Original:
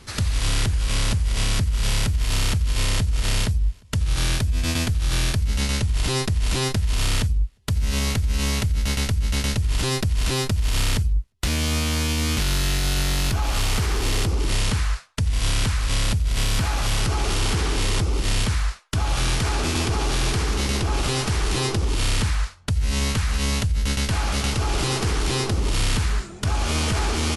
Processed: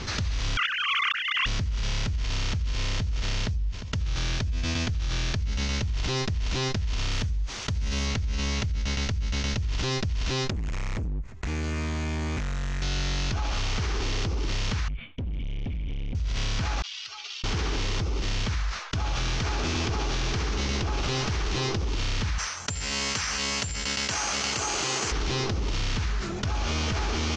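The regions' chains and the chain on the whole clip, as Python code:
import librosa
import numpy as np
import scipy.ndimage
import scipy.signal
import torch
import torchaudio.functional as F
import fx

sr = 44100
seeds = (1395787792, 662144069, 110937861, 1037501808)

y = fx.chain(x, sr, fx.sine_speech(),
    fx.highpass(hz=230.0, slope=12),
    fx.quant_float(bits=2), at=(0.57, 1.46))
y = fx.chain(y, sr, fx.peak_eq(hz=11000.0, db=12.5, octaves=0.43),
    fx.quant_dither(seeds[0], bits=8, dither='triangular'), at=(7.11, 8.06))
y = fx.chain(y, sr, fx.band_shelf(hz=4100.0, db=-12.5, octaves=1.3),
    fx.clip_hard(threshold_db=-26.5), at=(10.5, 12.82))
y = fx.chain(y, sr, fx.formant_cascade(vowel='i'),
    fx.low_shelf(hz=97.0, db=9.5),
    fx.overload_stage(gain_db=30.0), at=(14.88, 16.15))
y = fx.chain(y, sr, fx.spec_expand(power=1.8),
    fx.ladder_bandpass(hz=4400.0, resonance_pct=20), at=(16.82, 17.44))
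y = fx.chain(y, sr, fx.highpass(hz=560.0, slope=6),
    fx.resample_bad(factor=6, down='filtered', up='zero_stuff'), at=(22.38, 25.12))
y = scipy.signal.sosfilt(scipy.signal.ellip(4, 1.0, 80, 6300.0, 'lowpass', fs=sr, output='sos'), y)
y = fx.env_flatten(y, sr, amount_pct=70)
y = y * 10.0 ** (-8.5 / 20.0)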